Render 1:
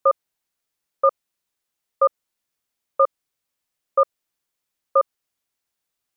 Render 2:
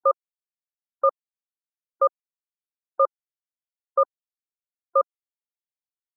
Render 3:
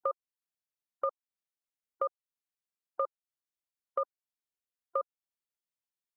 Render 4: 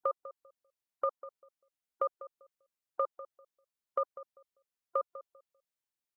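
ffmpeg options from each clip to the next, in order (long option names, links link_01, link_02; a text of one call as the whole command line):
ffmpeg -i in.wav -af "afftfilt=real='re*gte(hypot(re,im),0.02)':imag='im*gte(hypot(re,im),0.02)':win_size=1024:overlap=0.75,volume=-2.5dB" out.wav
ffmpeg -i in.wav -af "acompressor=threshold=-32dB:ratio=2.5,volume=-2dB" out.wav
ffmpeg -i in.wav -filter_complex "[0:a]asplit=2[link_01][link_02];[link_02]adelay=197,lowpass=frequency=1000:poles=1,volume=-13dB,asplit=2[link_03][link_04];[link_04]adelay=197,lowpass=frequency=1000:poles=1,volume=0.24,asplit=2[link_05][link_06];[link_06]adelay=197,lowpass=frequency=1000:poles=1,volume=0.24[link_07];[link_01][link_03][link_05][link_07]amix=inputs=4:normalize=0" out.wav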